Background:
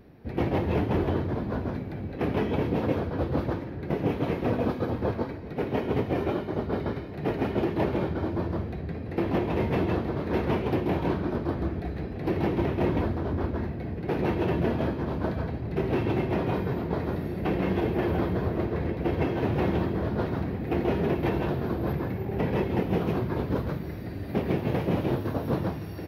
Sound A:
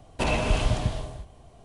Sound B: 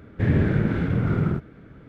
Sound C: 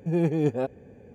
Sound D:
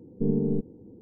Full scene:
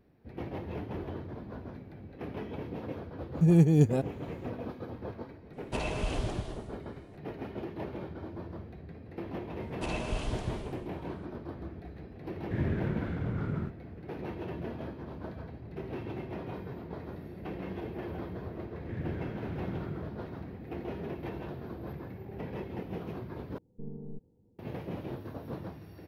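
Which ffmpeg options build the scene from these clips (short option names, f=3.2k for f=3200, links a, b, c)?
-filter_complex "[1:a]asplit=2[a][b];[2:a]asplit=2[c][d];[0:a]volume=-12.5dB[e];[3:a]bass=f=250:g=13,treble=f=4k:g=14[f];[4:a]equalizer=f=310:t=o:w=1.7:g=-12.5[g];[e]asplit=2[h][i];[h]atrim=end=23.584[j];[g]atrim=end=1.01,asetpts=PTS-STARTPTS,volume=-10dB[k];[i]atrim=start=24.586[l];[f]atrim=end=1.14,asetpts=PTS-STARTPTS,volume=-5dB,afade=t=in:d=0.004:c=hsin,afade=t=out:st=1.136:d=0.004:c=hsin,adelay=3350[m];[a]atrim=end=1.64,asetpts=PTS-STARTPTS,volume=-9.5dB,afade=t=in:d=0.004:c=hsin,afade=t=out:st=1.636:d=0.004:c=hsin,adelay=243873S[n];[b]atrim=end=1.64,asetpts=PTS-STARTPTS,volume=-10.5dB,afade=t=in:d=0.004:c=hsin,afade=t=out:st=1.636:d=0.004:c=hsin,adelay=424242S[o];[c]atrim=end=1.88,asetpts=PTS-STARTPTS,volume=-11.5dB,afade=t=in:d=0.004:c=hsin,afade=t=out:st=1.876:d=0.004:c=hsin,adelay=12310[p];[d]atrim=end=1.88,asetpts=PTS-STARTPTS,volume=-18dB,afade=t=in:d=0.004:c=hsin,afade=t=out:st=1.876:d=0.004:c=hsin,adelay=18700[q];[j][k]acrossfade=d=0.004:c1=hsin:c2=hsin[r];[r][l]acrossfade=d=0.004:c1=hsin:c2=hsin[s];[s][m][n][o][p][q]amix=inputs=6:normalize=0"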